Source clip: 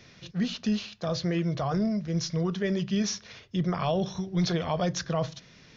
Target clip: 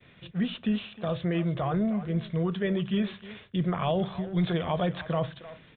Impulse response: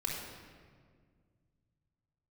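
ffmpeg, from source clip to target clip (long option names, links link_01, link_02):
-filter_complex "[0:a]asplit=2[link_01][link_02];[link_02]adelay=310,highpass=300,lowpass=3400,asoftclip=type=hard:threshold=-27.5dB,volume=-12dB[link_03];[link_01][link_03]amix=inputs=2:normalize=0,aresample=8000,aresample=44100,agate=range=-33dB:threshold=-52dB:ratio=3:detection=peak"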